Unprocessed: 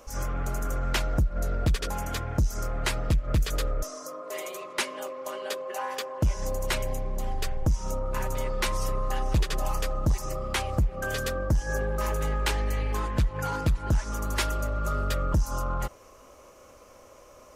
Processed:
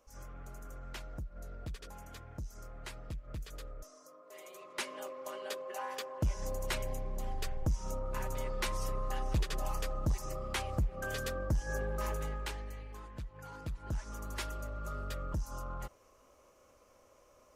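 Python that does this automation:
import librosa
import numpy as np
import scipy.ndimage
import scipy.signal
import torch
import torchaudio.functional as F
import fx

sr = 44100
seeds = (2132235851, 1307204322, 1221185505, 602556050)

y = fx.gain(x, sr, db=fx.line((4.28, -18.0), (4.93, -7.5), (12.1, -7.5), (12.89, -19.0), (13.43, -19.0), (13.99, -12.0)))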